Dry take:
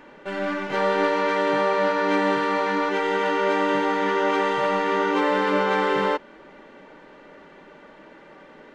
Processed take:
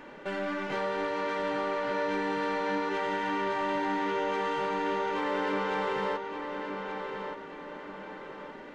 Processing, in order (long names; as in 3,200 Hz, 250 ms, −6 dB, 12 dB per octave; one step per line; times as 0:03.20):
downward compressor 2.5 to 1, threshold −31 dBFS, peak gain reduction 9.5 dB
soft clipping −23.5 dBFS, distortion −19 dB
feedback echo with a low-pass in the loop 1,174 ms, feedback 39%, low-pass 4,900 Hz, level −6 dB